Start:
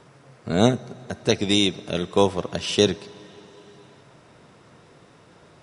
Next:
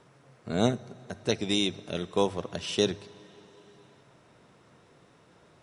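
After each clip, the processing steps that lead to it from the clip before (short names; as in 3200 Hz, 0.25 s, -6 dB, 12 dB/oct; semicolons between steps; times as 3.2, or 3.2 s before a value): notch 4800 Hz, Q 22; de-hum 50.18 Hz, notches 3; gain -7 dB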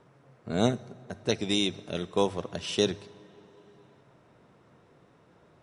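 mismatched tape noise reduction decoder only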